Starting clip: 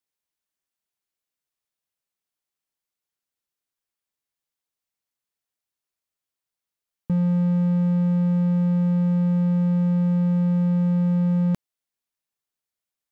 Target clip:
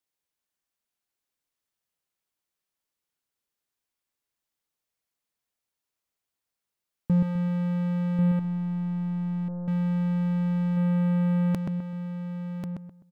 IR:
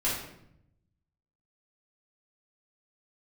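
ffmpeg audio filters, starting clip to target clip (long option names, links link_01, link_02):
-filter_complex "[0:a]asplit=2[link_01][link_02];[link_02]adelay=128,lowpass=frequency=1800:poles=1,volume=-3dB,asplit=2[link_03][link_04];[link_04]adelay=128,lowpass=frequency=1800:poles=1,volume=0.32,asplit=2[link_05][link_06];[link_06]adelay=128,lowpass=frequency=1800:poles=1,volume=0.32,asplit=2[link_07][link_08];[link_08]adelay=128,lowpass=frequency=1800:poles=1,volume=0.32[link_09];[link_03][link_05][link_07][link_09]amix=inputs=4:normalize=0[link_10];[link_01][link_10]amix=inputs=2:normalize=0,asettb=1/sr,asplit=3[link_11][link_12][link_13];[link_11]atrim=end=8.394[link_14];[link_12]atrim=start=8.39:end=9.68,asetpts=PTS-STARTPTS,afade=type=in:duration=0.004:curve=qsin,afade=type=out:start_time=1.286:duration=0.004:curve=qsin,aeval=exprs='(tanh(56.2*val(0)+0.2)-tanh(0.2))/56.2':channel_layout=same[link_15];[link_13]atrim=start=9.676[link_16];[link_14][link_15]acrossfade=duration=0.004:curve1=hsin:curve2=qsin[link_17];[link_17][link_16]acrossfade=duration=0.004:curve1=qsin:curve2=hsin,asplit=2[link_18][link_19];[link_19]aecho=0:1:1091:0.447[link_20];[link_18][link_20]amix=inputs=2:normalize=0"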